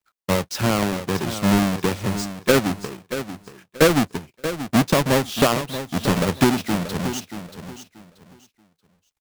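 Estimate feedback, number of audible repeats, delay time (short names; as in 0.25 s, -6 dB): 24%, 2, 0.632 s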